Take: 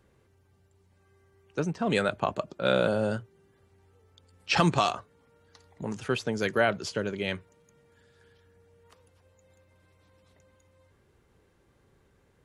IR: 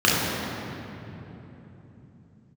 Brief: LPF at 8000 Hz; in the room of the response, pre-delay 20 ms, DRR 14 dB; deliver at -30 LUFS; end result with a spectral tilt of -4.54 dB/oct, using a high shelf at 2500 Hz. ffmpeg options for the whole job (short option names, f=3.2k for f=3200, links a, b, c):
-filter_complex "[0:a]lowpass=8k,highshelf=f=2.5k:g=-3,asplit=2[a][b];[1:a]atrim=start_sample=2205,adelay=20[c];[b][c]afir=irnorm=-1:irlink=0,volume=-35.5dB[d];[a][d]amix=inputs=2:normalize=0,volume=-1dB"